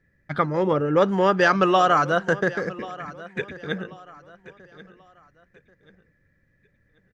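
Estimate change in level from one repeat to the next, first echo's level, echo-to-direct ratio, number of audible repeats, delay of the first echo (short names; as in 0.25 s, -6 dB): -9.5 dB, -18.0 dB, -17.5 dB, 2, 1.086 s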